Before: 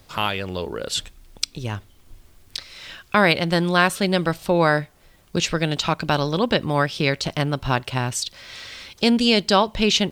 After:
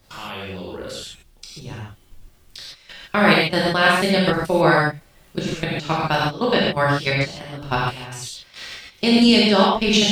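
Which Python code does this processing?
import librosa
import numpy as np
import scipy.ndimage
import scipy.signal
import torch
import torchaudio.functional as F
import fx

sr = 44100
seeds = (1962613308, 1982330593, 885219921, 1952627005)

y = fx.level_steps(x, sr, step_db=19)
y = fx.rev_gated(y, sr, seeds[0], gate_ms=170, shape='flat', drr_db=-6.0)
y = y * librosa.db_to_amplitude(-1.0)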